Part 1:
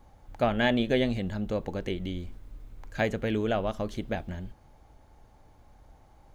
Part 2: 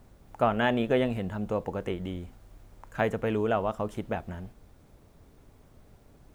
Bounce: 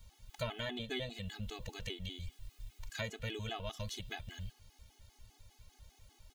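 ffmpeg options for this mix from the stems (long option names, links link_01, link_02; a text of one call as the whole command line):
ffmpeg -i stem1.wav -i stem2.wav -filter_complex "[0:a]firequalizer=gain_entry='entry(110,0);entry(170,-16);entry(2900,11)':delay=0.05:min_phase=1,acompressor=threshold=-37dB:ratio=5,volume=0dB[link_01];[1:a]volume=-1,volume=-13dB[link_02];[link_01][link_02]amix=inputs=2:normalize=0,afftfilt=real='re*gt(sin(2*PI*5*pts/sr)*(1-2*mod(floor(b*sr/1024/220),2)),0)':imag='im*gt(sin(2*PI*5*pts/sr)*(1-2*mod(floor(b*sr/1024/220),2)),0)':win_size=1024:overlap=0.75" out.wav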